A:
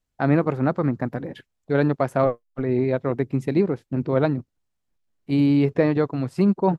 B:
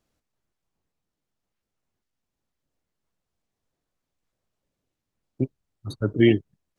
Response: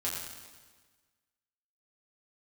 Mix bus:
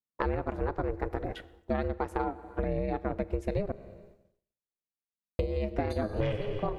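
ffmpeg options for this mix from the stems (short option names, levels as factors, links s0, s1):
-filter_complex "[0:a]volume=1.26,asplit=3[s0][s1][s2];[s0]atrim=end=3.72,asetpts=PTS-STARTPTS,afade=t=out:st=3.716:d=0.004:c=hsin[s3];[s1]atrim=start=3.72:end=5.39,asetpts=PTS-STARTPTS,volume=0[s4];[s2]atrim=start=5.39,asetpts=PTS-STARTPTS,afade=t=in:d=0.004:c=hsin[s5];[s3][s4][s5]concat=n=3:v=0:a=1,asplit=2[s6][s7];[s7]volume=0.1[s8];[1:a]asoftclip=type=tanh:threshold=0.251,volume=1.12,asplit=3[s9][s10][s11];[s10]volume=0.631[s12];[s11]apad=whole_len=299070[s13];[s6][s13]sidechaincompress=threshold=0.0501:ratio=8:attack=44:release=1020[s14];[2:a]atrim=start_sample=2205[s15];[s8][s12]amix=inputs=2:normalize=0[s16];[s16][s15]afir=irnorm=-1:irlink=0[s17];[s14][s9][s17]amix=inputs=3:normalize=0,agate=range=0.0224:threshold=0.00316:ratio=3:detection=peak,aeval=exprs='val(0)*sin(2*PI*210*n/s)':c=same,acompressor=threshold=0.0501:ratio=10"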